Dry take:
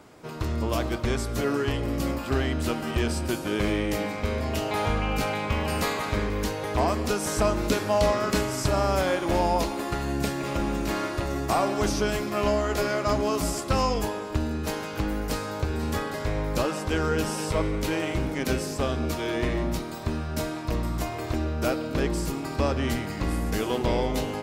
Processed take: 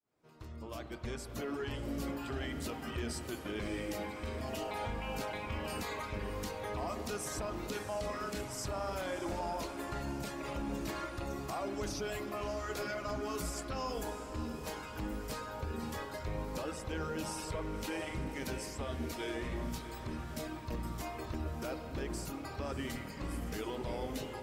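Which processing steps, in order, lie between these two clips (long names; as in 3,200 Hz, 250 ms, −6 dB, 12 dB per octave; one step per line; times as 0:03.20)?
fade in at the beginning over 2.02 s
reverb reduction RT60 1.7 s
brickwall limiter −23.5 dBFS, peak gain reduction 11 dB
on a send: feedback delay with all-pass diffusion 633 ms, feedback 58%, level −11.5 dB
on the sum: spring reverb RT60 3.7 s, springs 50 ms, chirp 45 ms, DRR 8 dB
level −6.5 dB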